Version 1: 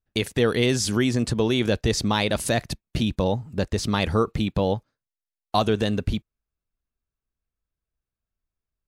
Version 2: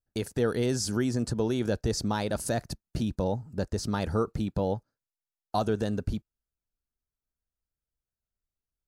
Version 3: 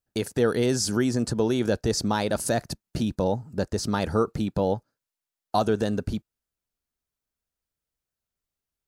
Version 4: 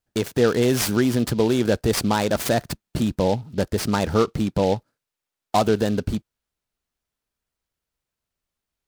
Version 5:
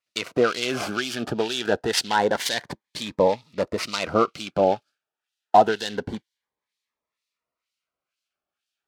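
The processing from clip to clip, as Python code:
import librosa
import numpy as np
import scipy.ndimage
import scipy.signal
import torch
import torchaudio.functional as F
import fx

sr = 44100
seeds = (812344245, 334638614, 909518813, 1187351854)

y1 = fx.band_shelf(x, sr, hz=2700.0, db=-9.5, octaves=1.2)
y1 = fx.notch(y1, sr, hz=1100.0, q=9.1)
y1 = y1 * librosa.db_to_amplitude(-5.5)
y2 = fx.low_shelf(y1, sr, hz=81.0, db=-10.5)
y2 = y2 * librosa.db_to_amplitude(5.0)
y3 = fx.noise_mod_delay(y2, sr, seeds[0], noise_hz=3400.0, depth_ms=0.032)
y3 = y3 * librosa.db_to_amplitude(4.0)
y4 = fx.filter_lfo_bandpass(y3, sr, shape='sine', hz=2.1, low_hz=730.0, high_hz=3800.0, q=1.1)
y4 = fx.notch_cascade(y4, sr, direction='rising', hz=0.27)
y4 = y4 * librosa.db_to_amplitude(8.0)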